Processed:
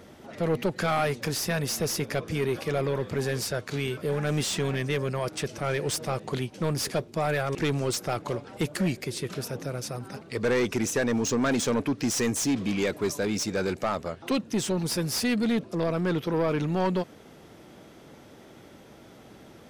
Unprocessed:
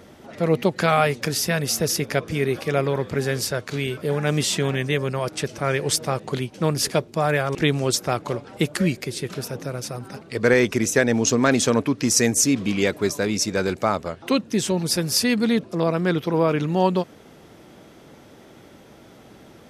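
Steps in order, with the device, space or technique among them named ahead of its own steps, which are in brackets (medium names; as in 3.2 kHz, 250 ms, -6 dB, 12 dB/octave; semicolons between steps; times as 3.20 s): saturation between pre-emphasis and de-emphasis (treble shelf 3.9 kHz +9.5 dB; saturation -16.5 dBFS, distortion -9 dB; treble shelf 3.9 kHz -9.5 dB); trim -2.5 dB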